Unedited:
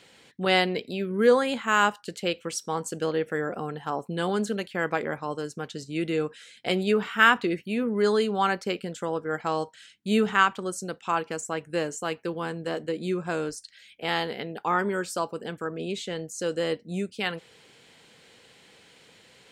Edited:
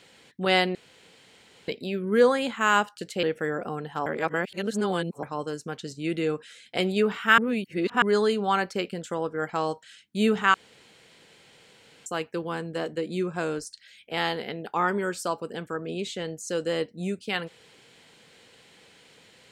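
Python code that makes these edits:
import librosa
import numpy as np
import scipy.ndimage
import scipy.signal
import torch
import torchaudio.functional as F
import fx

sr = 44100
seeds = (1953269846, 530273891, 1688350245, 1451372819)

y = fx.edit(x, sr, fx.insert_room_tone(at_s=0.75, length_s=0.93),
    fx.cut(start_s=2.3, length_s=0.84),
    fx.reverse_span(start_s=3.97, length_s=1.17),
    fx.reverse_span(start_s=7.29, length_s=0.64),
    fx.room_tone_fill(start_s=10.45, length_s=1.52), tone=tone)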